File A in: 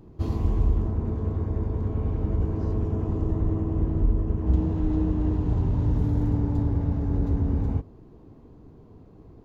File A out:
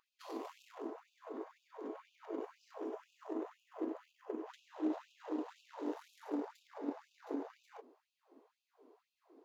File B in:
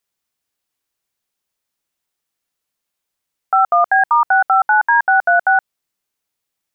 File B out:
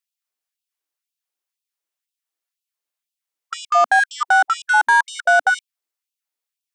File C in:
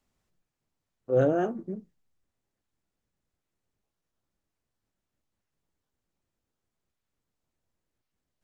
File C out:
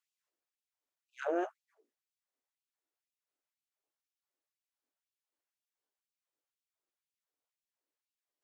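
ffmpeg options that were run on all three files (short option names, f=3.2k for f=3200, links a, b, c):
-af "aeval=exprs='0.531*(cos(1*acos(clip(val(0)/0.531,-1,1)))-cos(1*PI/2))+0.0376*(cos(3*acos(clip(val(0)/0.531,-1,1)))-cos(3*PI/2))+0.00841*(cos(5*acos(clip(val(0)/0.531,-1,1)))-cos(5*PI/2))+0.0335*(cos(7*acos(clip(val(0)/0.531,-1,1)))-cos(7*PI/2))':c=same,afftfilt=real='re*gte(b*sr/1024,240*pow(2500/240,0.5+0.5*sin(2*PI*2*pts/sr)))':imag='im*gte(b*sr/1024,240*pow(2500/240,0.5+0.5*sin(2*PI*2*pts/sr)))':win_size=1024:overlap=0.75"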